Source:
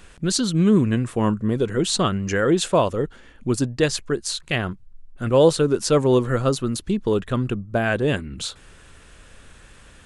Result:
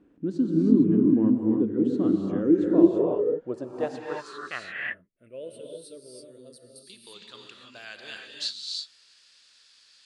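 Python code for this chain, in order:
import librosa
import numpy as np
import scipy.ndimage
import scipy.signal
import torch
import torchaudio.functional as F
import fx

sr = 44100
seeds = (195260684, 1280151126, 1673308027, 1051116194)

y = fx.spec_box(x, sr, start_s=4.59, length_s=2.26, low_hz=680.0, high_hz=8200.0, gain_db=-25)
y = fx.rev_gated(y, sr, seeds[0], gate_ms=360, shape='rising', drr_db=0.0)
y = fx.filter_sweep_bandpass(y, sr, from_hz=290.0, to_hz=4600.0, start_s=2.74, end_s=6.09, q=6.0)
y = y * 10.0 ** (5.5 / 20.0)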